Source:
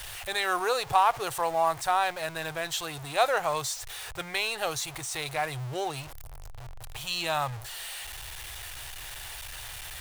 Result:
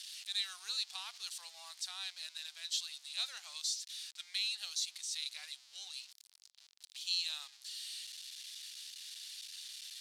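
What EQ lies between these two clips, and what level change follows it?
ladder band-pass 5100 Hz, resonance 45%; +6.5 dB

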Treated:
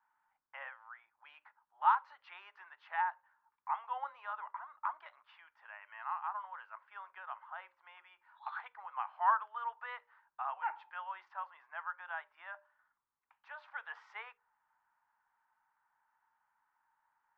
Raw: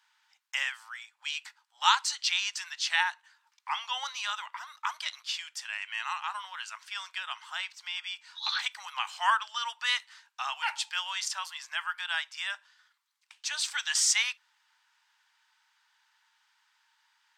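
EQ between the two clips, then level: Bessel low-pass 890 Hz, order 4; low shelf 470 Hz +9.5 dB; notches 60/120/180/240/300/360/420/480/540/600 Hz; 0.0 dB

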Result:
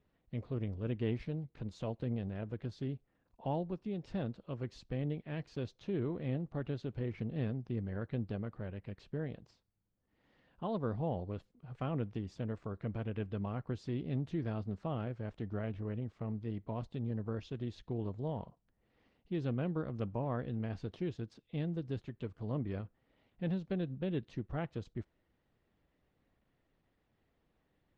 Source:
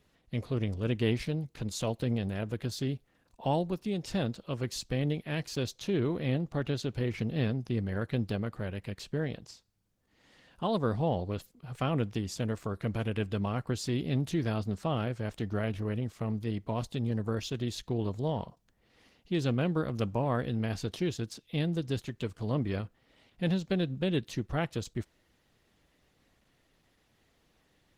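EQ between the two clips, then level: tape spacing loss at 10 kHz 28 dB; -5.5 dB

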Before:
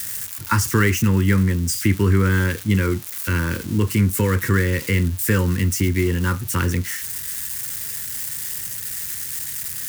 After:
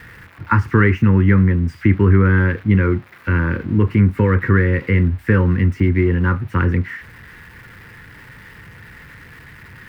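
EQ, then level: air absorption 390 m; resonant high shelf 2600 Hz -6 dB, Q 1.5; +4.5 dB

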